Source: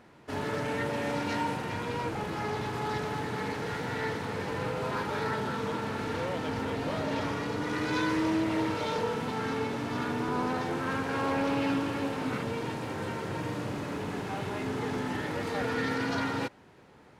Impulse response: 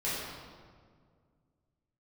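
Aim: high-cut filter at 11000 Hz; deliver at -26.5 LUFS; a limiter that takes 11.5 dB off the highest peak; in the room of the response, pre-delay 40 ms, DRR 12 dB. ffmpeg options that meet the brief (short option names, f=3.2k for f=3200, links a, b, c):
-filter_complex "[0:a]lowpass=11k,alimiter=level_in=6dB:limit=-24dB:level=0:latency=1,volume=-6dB,asplit=2[a][b];[1:a]atrim=start_sample=2205,adelay=40[c];[b][c]afir=irnorm=-1:irlink=0,volume=-19.5dB[d];[a][d]amix=inputs=2:normalize=0,volume=11.5dB"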